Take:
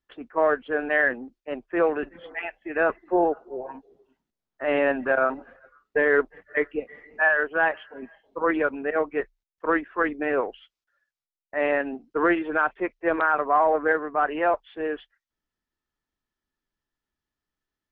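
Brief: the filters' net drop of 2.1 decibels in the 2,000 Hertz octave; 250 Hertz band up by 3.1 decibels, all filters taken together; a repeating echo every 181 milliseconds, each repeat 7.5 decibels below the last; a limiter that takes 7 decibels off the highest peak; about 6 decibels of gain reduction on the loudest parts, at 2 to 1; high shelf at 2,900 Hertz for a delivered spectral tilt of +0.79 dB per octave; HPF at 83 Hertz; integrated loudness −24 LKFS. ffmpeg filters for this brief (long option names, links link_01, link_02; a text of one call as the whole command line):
ffmpeg -i in.wav -af "highpass=83,equalizer=frequency=250:width_type=o:gain=4.5,equalizer=frequency=2000:width_type=o:gain=-5.5,highshelf=frequency=2900:gain=8,acompressor=threshold=-26dB:ratio=2,alimiter=limit=-21dB:level=0:latency=1,aecho=1:1:181|362|543|724|905:0.422|0.177|0.0744|0.0312|0.0131,volume=7.5dB" out.wav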